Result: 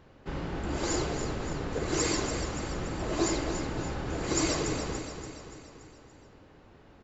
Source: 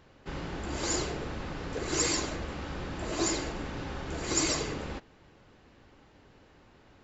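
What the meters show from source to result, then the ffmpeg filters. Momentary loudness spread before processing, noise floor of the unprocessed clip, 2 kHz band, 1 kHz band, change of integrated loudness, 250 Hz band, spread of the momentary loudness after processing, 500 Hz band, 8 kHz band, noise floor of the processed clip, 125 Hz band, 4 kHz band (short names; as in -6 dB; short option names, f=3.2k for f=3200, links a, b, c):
11 LU, -59 dBFS, 0.0 dB, +2.0 dB, +0.5 dB, +3.0 dB, 14 LU, +3.0 dB, n/a, -56 dBFS, +3.5 dB, -1.5 dB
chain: -af "tiltshelf=f=1.5k:g=3,aecho=1:1:287|574|861|1148|1435|1722:0.398|0.215|0.116|0.0627|0.0339|0.0183"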